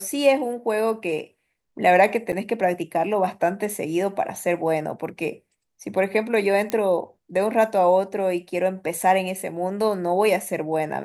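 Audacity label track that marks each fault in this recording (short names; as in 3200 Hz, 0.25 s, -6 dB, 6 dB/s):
2.320000	2.330000	gap 7.1 ms
6.700000	6.700000	pop -11 dBFS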